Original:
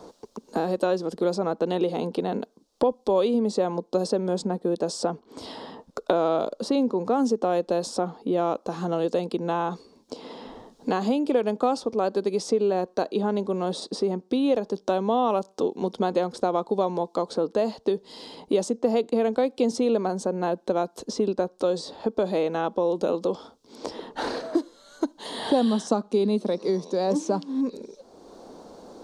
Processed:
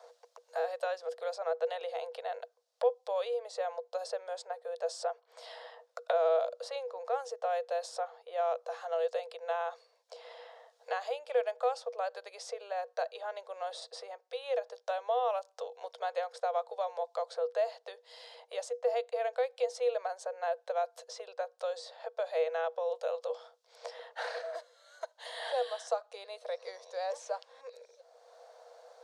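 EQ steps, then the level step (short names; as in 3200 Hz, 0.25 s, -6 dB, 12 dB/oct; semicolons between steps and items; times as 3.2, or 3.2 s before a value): rippled Chebyshev high-pass 470 Hz, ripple 9 dB; -2.0 dB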